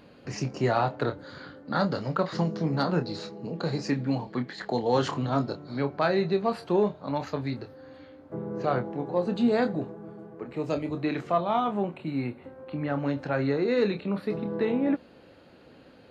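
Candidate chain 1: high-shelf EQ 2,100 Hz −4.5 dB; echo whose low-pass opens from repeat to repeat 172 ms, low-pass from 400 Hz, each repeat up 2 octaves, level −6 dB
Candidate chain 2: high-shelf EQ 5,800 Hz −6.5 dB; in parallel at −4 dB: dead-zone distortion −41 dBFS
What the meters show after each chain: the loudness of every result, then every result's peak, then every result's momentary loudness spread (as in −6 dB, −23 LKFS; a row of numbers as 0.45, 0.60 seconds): −28.0, −25.0 LKFS; −12.5, −9.0 dBFS; 10, 13 LU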